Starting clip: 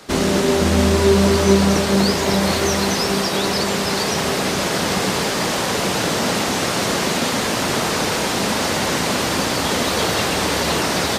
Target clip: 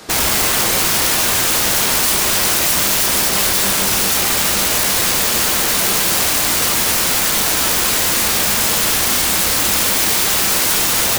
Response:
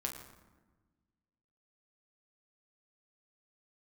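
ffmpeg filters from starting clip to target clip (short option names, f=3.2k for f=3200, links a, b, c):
-filter_complex "[0:a]aeval=exprs='(mod(7.08*val(0)+1,2)-1)/7.08':c=same,asplit=2[a][b];[b]highshelf=f=6.4k:g=8.5[c];[1:a]atrim=start_sample=2205[d];[c][d]afir=irnorm=-1:irlink=0,volume=0dB[e];[a][e]amix=inputs=2:normalize=0,volume=-1.5dB"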